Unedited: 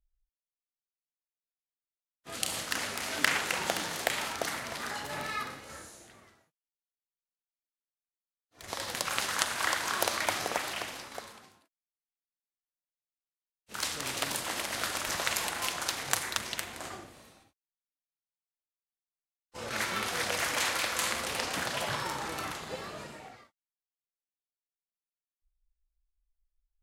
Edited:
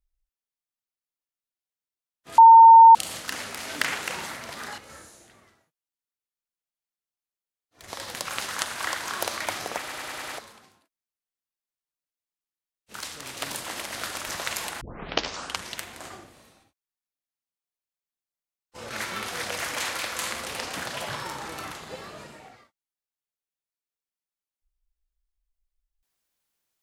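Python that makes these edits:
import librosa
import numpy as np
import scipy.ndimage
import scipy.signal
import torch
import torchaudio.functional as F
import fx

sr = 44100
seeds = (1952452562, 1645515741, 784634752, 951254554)

y = fx.edit(x, sr, fx.insert_tone(at_s=2.38, length_s=0.57, hz=909.0, db=-6.5),
    fx.cut(start_s=3.69, length_s=0.8),
    fx.cut(start_s=5.01, length_s=0.57),
    fx.stutter_over(start_s=10.58, slice_s=0.1, count=6),
    fx.clip_gain(start_s=13.8, length_s=0.4, db=-3.5),
    fx.tape_start(start_s=15.61, length_s=0.9), tone=tone)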